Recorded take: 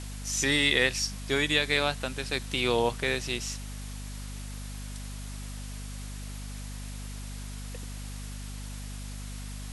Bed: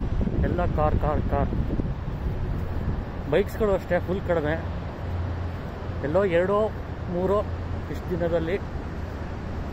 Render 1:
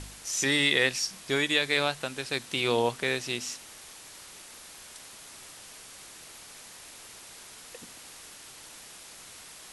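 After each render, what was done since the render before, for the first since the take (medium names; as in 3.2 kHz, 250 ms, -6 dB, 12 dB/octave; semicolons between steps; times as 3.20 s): de-hum 50 Hz, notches 5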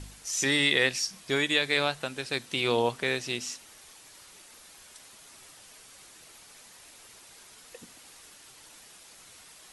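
noise reduction 6 dB, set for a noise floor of -48 dBFS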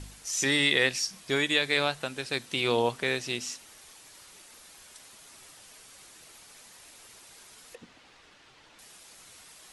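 7.75–8.79 s: low-pass 3.5 kHz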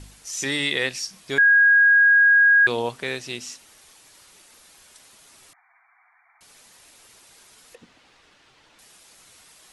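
1.38–2.67 s: bleep 1.64 kHz -11.5 dBFS; 5.53–6.41 s: brick-wall FIR band-pass 670–2400 Hz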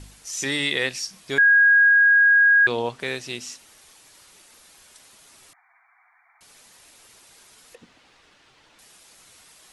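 1.89–3.00 s: distance through air 54 m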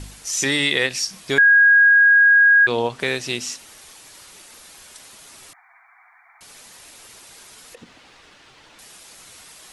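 in parallel at +2.5 dB: compression, threshold -26 dBFS, peak gain reduction 11.5 dB; on the sum: endings held to a fixed fall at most 300 dB/s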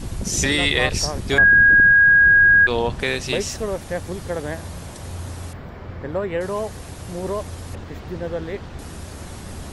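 add bed -3 dB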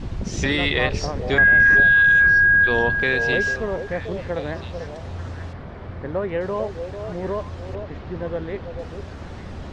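distance through air 180 m; on a send: repeats whose band climbs or falls 444 ms, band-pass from 560 Hz, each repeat 1.4 oct, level -5.5 dB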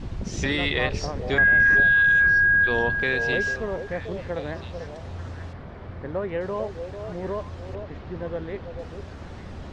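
trim -3.5 dB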